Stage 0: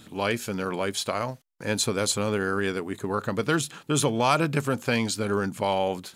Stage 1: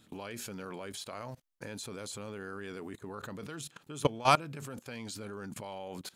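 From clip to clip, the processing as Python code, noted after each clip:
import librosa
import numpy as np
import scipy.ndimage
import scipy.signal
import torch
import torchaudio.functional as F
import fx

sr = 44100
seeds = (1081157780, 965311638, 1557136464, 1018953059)

y = fx.level_steps(x, sr, step_db=21)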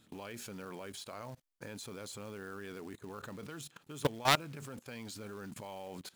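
y = fx.self_delay(x, sr, depth_ms=0.17)
y = fx.quant_float(y, sr, bits=2)
y = y * librosa.db_to_amplitude(-3.0)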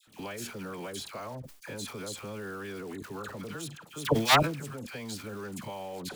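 y = fx.dispersion(x, sr, late='lows', ms=76.0, hz=1100.0)
y = fx.sustainer(y, sr, db_per_s=97.0)
y = y * librosa.db_to_amplitude(6.0)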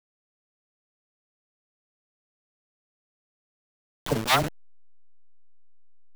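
y = fx.delta_hold(x, sr, step_db=-24.5)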